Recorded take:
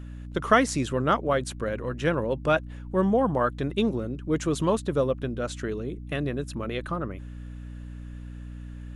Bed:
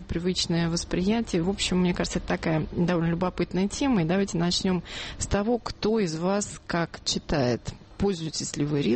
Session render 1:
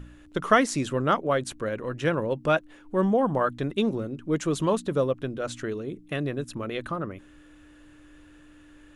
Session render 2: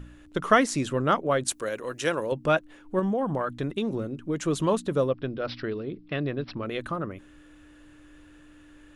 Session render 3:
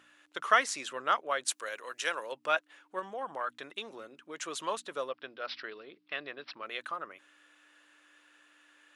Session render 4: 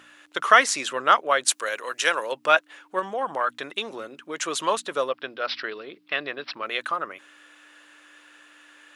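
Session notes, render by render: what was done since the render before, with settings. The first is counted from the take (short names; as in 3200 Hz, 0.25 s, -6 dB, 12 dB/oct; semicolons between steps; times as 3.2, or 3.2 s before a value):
de-hum 60 Hz, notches 4
1.48–2.32 tone controls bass -11 dB, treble +13 dB; 2.99–4.42 compressor, threshold -23 dBFS; 5.09–6.66 careless resampling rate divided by 4×, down none, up filtered
Bessel high-pass 1200 Hz, order 2; high shelf 8300 Hz -7.5 dB
gain +10.5 dB; limiter -2 dBFS, peak gain reduction 2.5 dB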